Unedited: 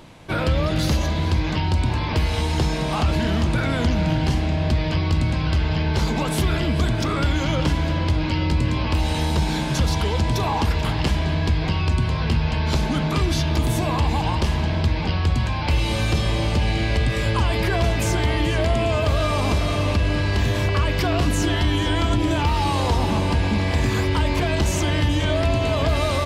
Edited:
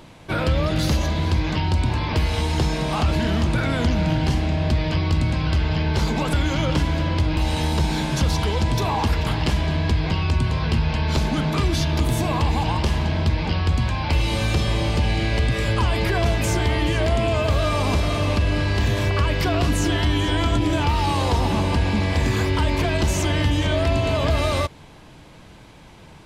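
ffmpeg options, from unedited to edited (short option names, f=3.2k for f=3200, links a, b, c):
-filter_complex "[0:a]asplit=3[a][b][c];[a]atrim=end=6.332[d];[b]atrim=start=7.228:end=8.272[e];[c]atrim=start=8.948[f];[d][e]acrossfade=d=0.004:c1=hsin:c2=hsin[g];[g][f]acrossfade=d=0.004:c1=hsin:c2=hsin"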